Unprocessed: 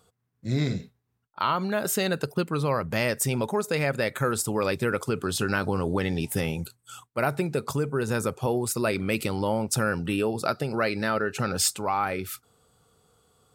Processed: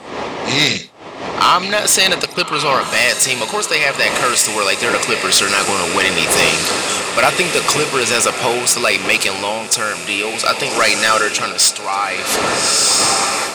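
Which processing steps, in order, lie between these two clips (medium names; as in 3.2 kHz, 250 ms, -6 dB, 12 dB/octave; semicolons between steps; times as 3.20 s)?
rattle on loud lows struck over -29 dBFS, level -33 dBFS; wind noise 460 Hz -35 dBFS; frequency weighting ITU-R 468; on a send: echo that smears into a reverb 1270 ms, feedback 57%, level -9.5 dB; on the sum: level rider gain up to 9 dB; band-stop 1.5 kHz, Q 7.3; overload inside the chain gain 13.5 dB; treble shelf 7 kHz -7 dB; trim +9 dB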